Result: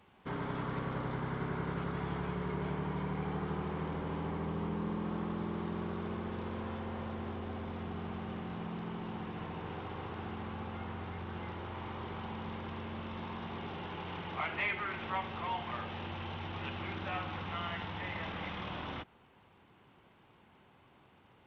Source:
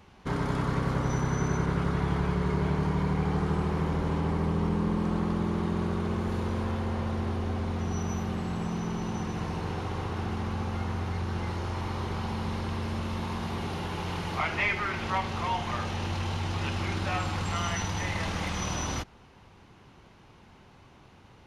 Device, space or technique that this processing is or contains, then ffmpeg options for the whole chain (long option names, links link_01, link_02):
Bluetooth headset: -af "highpass=frequency=160:poles=1,aresample=8000,aresample=44100,volume=-6.5dB" -ar 32000 -c:a sbc -b:a 64k